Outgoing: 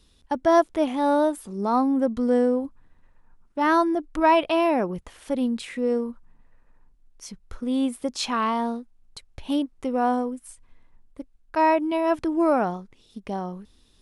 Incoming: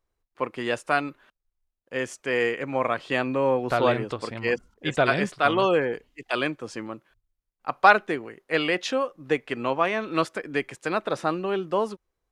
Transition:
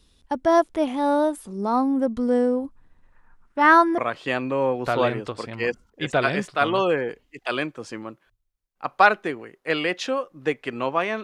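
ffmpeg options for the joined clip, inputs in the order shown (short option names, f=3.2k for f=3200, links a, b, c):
-filter_complex "[0:a]asettb=1/sr,asplit=3[a][b][c];[a]atrim=end=3.124[d];[b]atrim=start=3.12:end=3.98,asetpts=PTS-STARTPTS,afade=t=in:d=0.004:c=qsin,afade=t=out:st=0.856:d=0.004:c=qsin,equalizer=f=1.6k:w=0.89:g=10[e];[c]atrim=start=3.976[f];[d][e]acrossfade=d=0.004:c1=hsin:c2=qsin[g];[g][f]acrossfade=d=0.004:c1=qsin:c2=hsin,apad=whole_dur=11.23,atrim=end=11.23,atrim=end=3.982[h];[1:a]atrim=start=2.818:end=10.07[i];[h][i]acrossfade=d=0.004:c1=hsin:c2=hsin"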